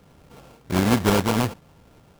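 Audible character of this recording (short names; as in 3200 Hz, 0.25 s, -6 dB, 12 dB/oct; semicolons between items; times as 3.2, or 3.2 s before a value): a buzz of ramps at a fixed pitch in blocks of 32 samples; tremolo saw up 2.5 Hz, depth 35%; aliases and images of a low sample rate 1900 Hz, jitter 20%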